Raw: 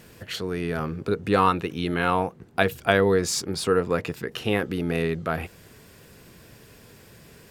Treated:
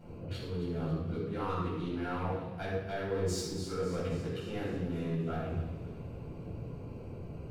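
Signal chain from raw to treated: Wiener smoothing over 25 samples; bell 93 Hz +3.5 dB; notches 50/100/150/200 Hz; reverse; compressor 5:1, threshold -39 dBFS, peak gain reduction 22 dB; reverse; soft clip -31 dBFS, distortion -17 dB; on a send: thin delay 0.272 s, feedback 60%, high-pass 2300 Hz, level -11 dB; on the sum: shoebox room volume 700 m³, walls mixed, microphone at 7.7 m; gain -8.5 dB

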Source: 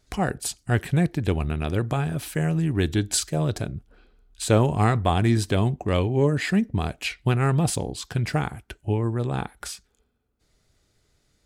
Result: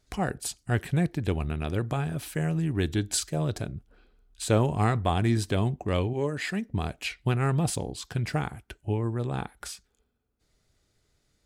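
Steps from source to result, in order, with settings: 6.13–6.71 low shelf 320 Hz -8.5 dB; gain -4 dB

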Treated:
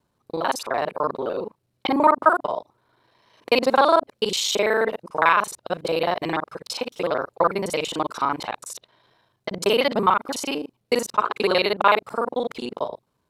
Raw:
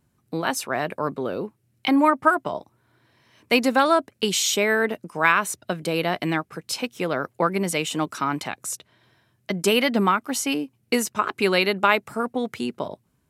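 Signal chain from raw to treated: local time reversal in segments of 37 ms; graphic EQ 500/1000/4000 Hz +9/+10/+9 dB; gain -7 dB

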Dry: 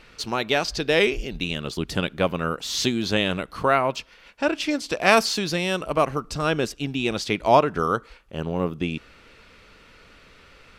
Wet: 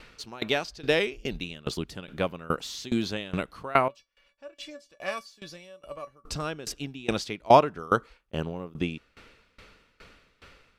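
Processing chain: 3.88–6.24 resonator 570 Hz, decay 0.17 s, harmonics all, mix 90%; dB-ramp tremolo decaying 2.4 Hz, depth 23 dB; gain +2.5 dB

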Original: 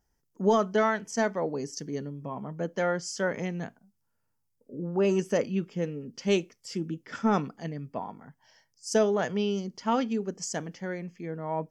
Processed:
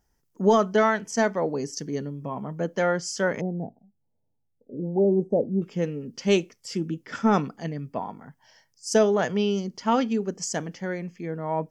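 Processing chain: 3.41–5.62 elliptic low-pass 800 Hz, stop band 40 dB; gain +4 dB

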